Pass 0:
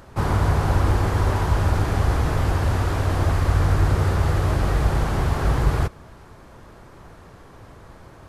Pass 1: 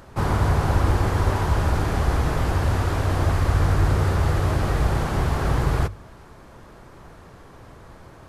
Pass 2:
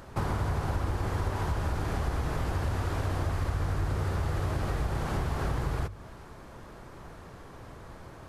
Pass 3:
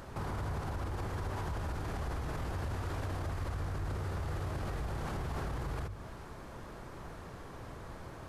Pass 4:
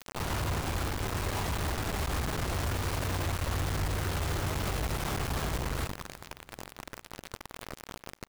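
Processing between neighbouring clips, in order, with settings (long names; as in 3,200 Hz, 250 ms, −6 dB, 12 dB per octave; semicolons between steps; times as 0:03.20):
mains-hum notches 50/100 Hz
downward compressor 4 to 1, threshold −26 dBFS, peak gain reduction 10.5 dB; level −1.5 dB
brickwall limiter −29.5 dBFS, peak gain reduction 10.5 dB
tube saturation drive 35 dB, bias 0.75; bit reduction 7 bits; repeating echo 378 ms, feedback 55%, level −22 dB; level +8.5 dB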